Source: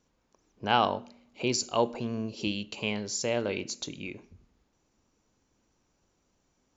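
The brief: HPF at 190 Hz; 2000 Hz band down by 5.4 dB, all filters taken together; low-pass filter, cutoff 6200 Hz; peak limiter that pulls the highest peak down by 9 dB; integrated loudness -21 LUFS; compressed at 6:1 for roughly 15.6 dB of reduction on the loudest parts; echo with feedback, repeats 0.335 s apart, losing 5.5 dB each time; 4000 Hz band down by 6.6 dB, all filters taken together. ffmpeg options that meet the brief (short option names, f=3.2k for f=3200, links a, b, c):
-af "highpass=190,lowpass=6.2k,equalizer=f=2k:t=o:g=-5.5,equalizer=f=4k:t=o:g=-6.5,acompressor=threshold=-37dB:ratio=6,alimiter=level_in=8.5dB:limit=-24dB:level=0:latency=1,volume=-8.5dB,aecho=1:1:335|670|1005|1340|1675|2010|2345:0.531|0.281|0.149|0.079|0.0419|0.0222|0.0118,volume=22.5dB"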